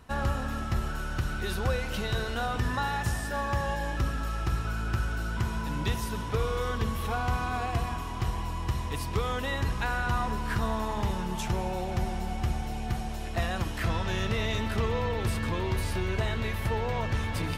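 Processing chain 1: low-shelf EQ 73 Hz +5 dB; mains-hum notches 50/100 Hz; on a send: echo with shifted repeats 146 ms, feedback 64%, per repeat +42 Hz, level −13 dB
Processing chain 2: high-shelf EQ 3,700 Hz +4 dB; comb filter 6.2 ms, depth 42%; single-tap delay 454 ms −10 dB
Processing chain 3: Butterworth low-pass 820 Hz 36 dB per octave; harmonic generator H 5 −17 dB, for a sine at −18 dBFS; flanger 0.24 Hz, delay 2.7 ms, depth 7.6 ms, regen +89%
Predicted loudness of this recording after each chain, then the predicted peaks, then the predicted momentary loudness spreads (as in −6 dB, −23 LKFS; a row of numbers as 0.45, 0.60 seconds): −29.5, −30.0, −35.0 LKFS; −15.5, −15.5, −22.5 dBFS; 3, 4, 3 LU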